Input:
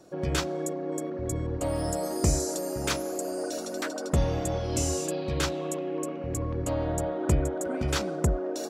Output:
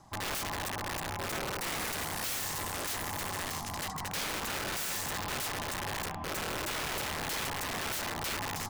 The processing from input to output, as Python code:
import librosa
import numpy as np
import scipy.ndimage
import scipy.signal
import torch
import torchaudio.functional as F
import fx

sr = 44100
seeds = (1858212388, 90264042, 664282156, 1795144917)

y = x * np.sin(2.0 * np.pi * 470.0 * np.arange(len(x)) / sr)
y = (np.mod(10.0 ** (29.0 / 20.0) * y + 1.0, 2.0) - 1.0) / 10.0 ** (29.0 / 20.0)